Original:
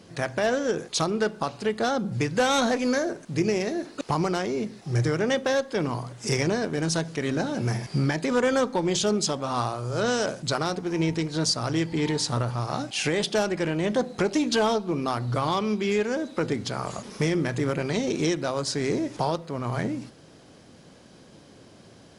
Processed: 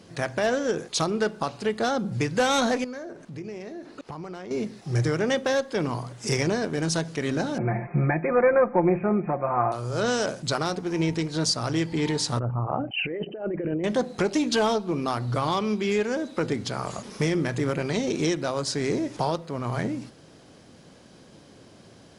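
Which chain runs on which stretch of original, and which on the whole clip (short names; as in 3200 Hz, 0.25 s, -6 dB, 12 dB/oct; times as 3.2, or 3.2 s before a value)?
2.84–4.51 high shelf 4500 Hz -10 dB + compressor 2.5:1, threshold -39 dBFS
7.58–9.72 Chebyshev low-pass 2500 Hz, order 10 + bell 700 Hz +7 dB 0.4 oct + comb 5.7 ms, depth 66%
12.39–13.84 formant sharpening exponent 2 + brick-wall FIR low-pass 3100 Hz + negative-ratio compressor -27 dBFS, ratio -0.5
whole clip: dry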